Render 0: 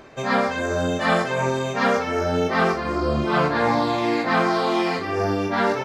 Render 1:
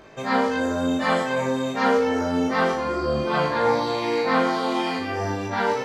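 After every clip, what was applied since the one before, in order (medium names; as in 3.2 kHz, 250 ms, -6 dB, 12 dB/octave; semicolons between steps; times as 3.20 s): feedback comb 52 Hz, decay 0.64 s, harmonics all, mix 90%; trim +8 dB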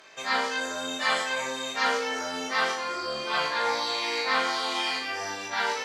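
band-pass filter 5.6 kHz, Q 0.52; trim +5.5 dB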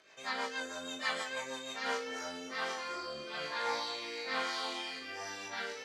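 rotary cabinet horn 6.3 Hz, later 1.2 Hz, at 1.52 s; trim -7 dB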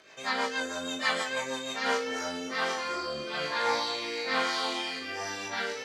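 bass shelf 330 Hz +4 dB; trim +6.5 dB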